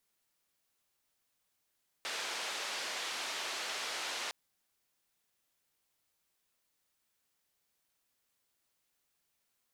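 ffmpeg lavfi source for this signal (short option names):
-f lavfi -i "anoisesrc=c=white:d=2.26:r=44100:seed=1,highpass=f=470,lowpass=f=4700,volume=-27.3dB"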